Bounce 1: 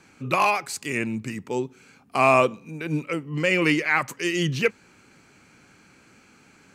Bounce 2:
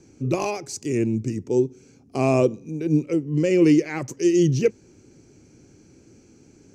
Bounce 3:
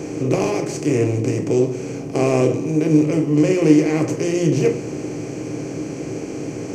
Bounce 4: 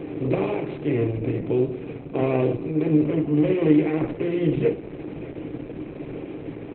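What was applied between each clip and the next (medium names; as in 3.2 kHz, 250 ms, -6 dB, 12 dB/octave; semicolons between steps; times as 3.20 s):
FFT filter 120 Hz 0 dB, 190 Hz -7 dB, 350 Hz +1 dB, 1.2 kHz -23 dB, 4 kHz -17 dB, 5.9 kHz -3 dB, 8.7 kHz -15 dB, 13 kHz -19 dB; trim +8.5 dB
spectral levelling over time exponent 0.4; reverberation RT60 0.45 s, pre-delay 7 ms, DRR 4 dB; trim -4 dB
delay 1028 ms -21.5 dB; trim -4 dB; Opus 8 kbps 48 kHz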